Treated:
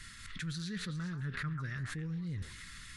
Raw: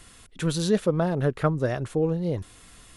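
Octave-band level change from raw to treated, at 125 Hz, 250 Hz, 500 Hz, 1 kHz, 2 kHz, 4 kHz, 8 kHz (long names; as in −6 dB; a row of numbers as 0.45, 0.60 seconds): −10.5, −13.5, −30.0, −16.5, −4.0, −7.5, −10.0 decibels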